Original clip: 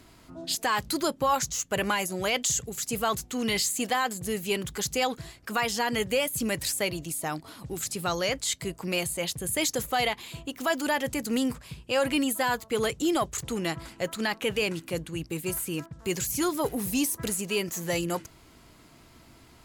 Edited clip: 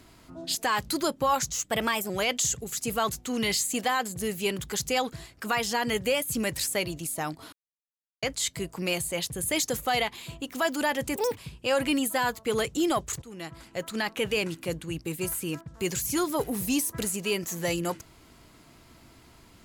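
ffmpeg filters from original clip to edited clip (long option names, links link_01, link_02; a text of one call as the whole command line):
ffmpeg -i in.wav -filter_complex "[0:a]asplit=8[link_01][link_02][link_03][link_04][link_05][link_06][link_07][link_08];[link_01]atrim=end=1.644[link_09];[link_02]atrim=start=1.64:end=2.15,asetpts=PTS-STARTPTS,asetrate=49392,aresample=44100,atrim=end_sample=20081,asetpts=PTS-STARTPTS[link_10];[link_03]atrim=start=2.146:end=7.58,asetpts=PTS-STARTPTS,afade=type=out:start_time=5.43:duration=0.004:curve=hsin[link_11];[link_04]atrim=start=7.58:end=8.28,asetpts=PTS-STARTPTS,volume=0[link_12];[link_05]atrim=start=8.28:end=11.214,asetpts=PTS-STARTPTS,afade=type=in:duration=0.004:curve=hsin[link_13];[link_06]atrim=start=11.21:end=11.63,asetpts=PTS-STARTPTS,asetrate=82467,aresample=44100[link_14];[link_07]atrim=start=11.626:end=13.47,asetpts=PTS-STARTPTS,afade=type=out:start_time=1.84:duration=0.004:curve=hsin:silence=0.11885[link_15];[link_08]atrim=start=13.47,asetpts=PTS-STARTPTS,afade=type=in:duration=1.18:curve=qsin:silence=0.11885[link_16];[link_09][link_10]acrossfade=duration=0.004:curve1=hsin:curve2=hsin[link_17];[link_11][link_12][link_13]concat=n=3:v=0:a=1[link_18];[link_17][link_18]acrossfade=duration=0.004:curve1=hsin:curve2=hsin[link_19];[link_19][link_14]acrossfade=duration=0.004:curve1=hsin:curve2=hsin[link_20];[link_15][link_16]concat=n=2:v=0:a=1[link_21];[link_20][link_21]acrossfade=duration=0.004:curve1=hsin:curve2=hsin" out.wav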